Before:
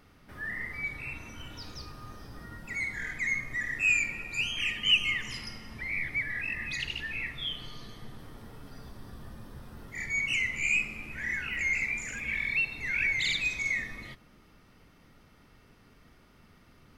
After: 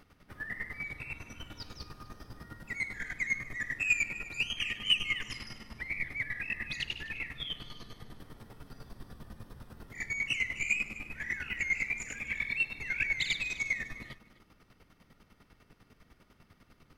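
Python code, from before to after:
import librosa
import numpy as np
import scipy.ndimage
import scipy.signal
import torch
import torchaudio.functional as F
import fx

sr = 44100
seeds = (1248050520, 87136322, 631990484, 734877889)

p1 = 10.0 ** (-21.0 / 20.0) * np.tanh(x / 10.0 ** (-21.0 / 20.0))
p2 = x + (p1 * 10.0 ** (-3.5 / 20.0))
p3 = fx.chopper(p2, sr, hz=10.0, depth_pct=65, duty_pct=30)
p4 = p3 + 10.0 ** (-18.0 / 20.0) * np.pad(p3, (int(253 * sr / 1000.0), 0))[:len(p3)]
y = p4 * 10.0 ** (-3.5 / 20.0)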